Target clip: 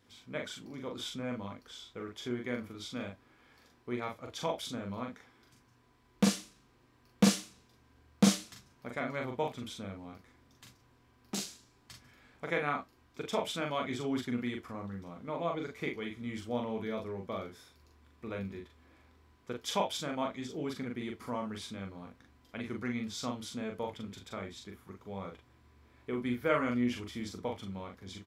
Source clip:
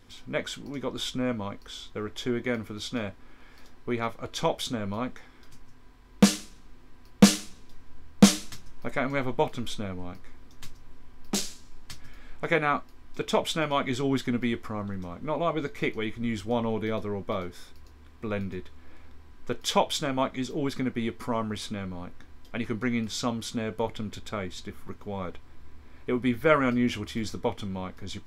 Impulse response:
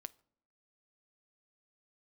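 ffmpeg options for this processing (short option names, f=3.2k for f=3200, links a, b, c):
-filter_complex "[0:a]highpass=87,asplit=2[a][b];[b]adelay=41,volume=-3.5dB[c];[a][c]amix=inputs=2:normalize=0,volume=-9dB"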